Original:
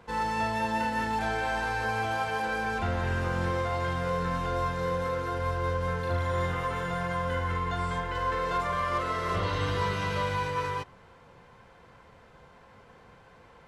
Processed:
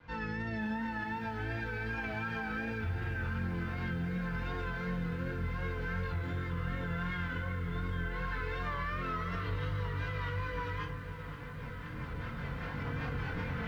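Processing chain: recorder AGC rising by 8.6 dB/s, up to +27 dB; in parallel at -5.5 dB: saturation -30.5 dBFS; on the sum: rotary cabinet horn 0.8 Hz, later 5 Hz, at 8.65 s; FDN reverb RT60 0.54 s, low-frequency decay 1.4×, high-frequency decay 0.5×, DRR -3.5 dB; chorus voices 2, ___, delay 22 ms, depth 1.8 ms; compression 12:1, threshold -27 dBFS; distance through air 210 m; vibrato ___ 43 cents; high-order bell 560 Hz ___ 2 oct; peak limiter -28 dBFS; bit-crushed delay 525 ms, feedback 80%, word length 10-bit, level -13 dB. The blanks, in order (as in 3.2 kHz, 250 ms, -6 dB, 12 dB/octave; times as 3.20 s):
0.66 Hz, 2.7 Hz, -9.5 dB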